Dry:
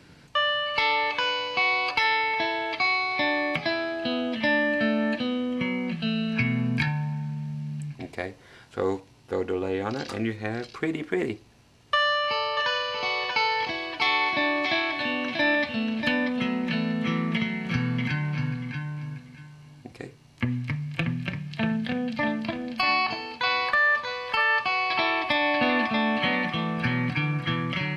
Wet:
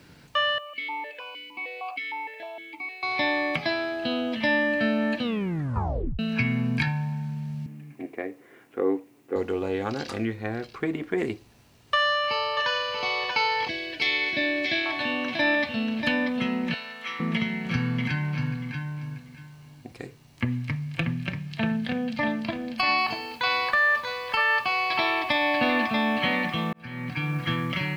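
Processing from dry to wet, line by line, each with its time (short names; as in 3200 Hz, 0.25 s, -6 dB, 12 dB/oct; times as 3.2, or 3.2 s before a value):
0.58–3.03 vowel sequencer 6.5 Hz
5.22 tape stop 0.97 s
7.66–9.36 speaker cabinet 260–2300 Hz, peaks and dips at 300 Hz +9 dB, 430 Hz +3 dB, 610 Hz -3 dB, 920 Hz -7 dB, 1500 Hz -6 dB
10.25–11.18 high shelf 4000 Hz -10 dB
13.68–14.86 band shelf 980 Hz -15.5 dB 1 oct
16.74–17.2 HPF 1000 Hz
22.98 noise floor step -70 dB -59 dB
26.73–27.4 fade in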